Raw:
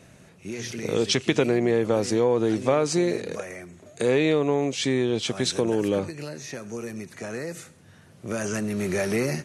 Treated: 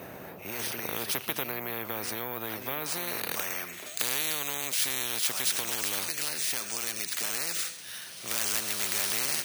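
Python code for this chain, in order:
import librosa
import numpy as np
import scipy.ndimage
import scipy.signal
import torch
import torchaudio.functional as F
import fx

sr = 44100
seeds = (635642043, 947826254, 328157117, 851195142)

p1 = fx.filter_sweep_bandpass(x, sr, from_hz=510.0, to_hz=4200.0, start_s=2.81, end_s=4.04, q=1.0)
p2 = fx.rider(p1, sr, range_db=5, speed_s=0.5)
p3 = p1 + (p2 * librosa.db_to_amplitude(2.5))
p4 = np.repeat(scipy.signal.resample_poly(p3, 1, 3), 3)[:len(p3)]
p5 = fx.high_shelf(p4, sr, hz=4600.0, db=9.5)
p6 = fx.spectral_comp(p5, sr, ratio=4.0)
y = p6 * librosa.db_to_amplitude(-8.5)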